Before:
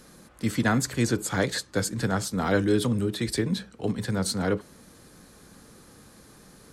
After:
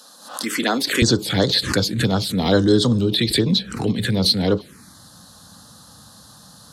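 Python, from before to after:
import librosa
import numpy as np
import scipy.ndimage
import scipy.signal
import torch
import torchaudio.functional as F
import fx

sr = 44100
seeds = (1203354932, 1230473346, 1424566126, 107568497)

y = fx.highpass(x, sr, hz=fx.steps((0.0, 280.0), (1.02, 70.0)), slope=24)
y = fx.env_phaser(y, sr, low_hz=360.0, high_hz=2400.0, full_db=-20.5)
y = fx.peak_eq(y, sr, hz=3900.0, db=10.0, octaves=0.94)
y = fx.pre_swell(y, sr, db_per_s=89.0)
y = y * 10.0 ** (7.5 / 20.0)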